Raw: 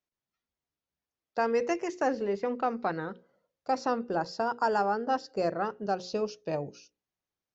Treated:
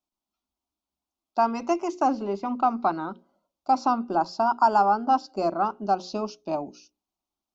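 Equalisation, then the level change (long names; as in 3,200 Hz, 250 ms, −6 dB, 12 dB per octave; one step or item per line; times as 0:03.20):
high-shelf EQ 5,900 Hz −7.5 dB
dynamic equaliser 1,300 Hz, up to +6 dB, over −44 dBFS, Q 1.2
phaser with its sweep stopped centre 480 Hz, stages 6
+6.5 dB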